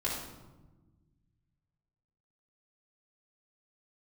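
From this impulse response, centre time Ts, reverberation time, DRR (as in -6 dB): 56 ms, 1.2 s, -7.0 dB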